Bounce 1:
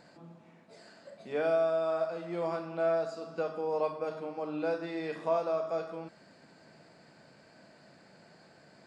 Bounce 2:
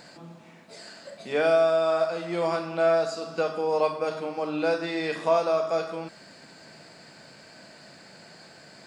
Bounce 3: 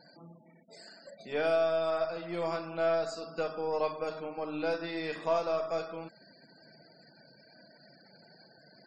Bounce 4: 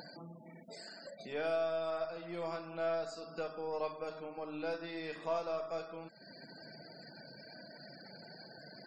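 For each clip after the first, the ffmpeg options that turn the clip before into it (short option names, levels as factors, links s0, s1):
-af "highshelf=f=2000:g=9.5,volume=2"
-af "highshelf=f=6800:g=4,aeval=exprs='0.282*(cos(1*acos(clip(val(0)/0.282,-1,1)))-cos(1*PI/2))+0.00708*(cos(8*acos(clip(val(0)/0.282,-1,1)))-cos(8*PI/2))':c=same,afftfilt=real='re*gte(hypot(re,im),0.00631)':imag='im*gte(hypot(re,im),0.00631)':win_size=1024:overlap=0.75,volume=0.447"
-af "acompressor=mode=upward:threshold=0.02:ratio=2.5,volume=0.473"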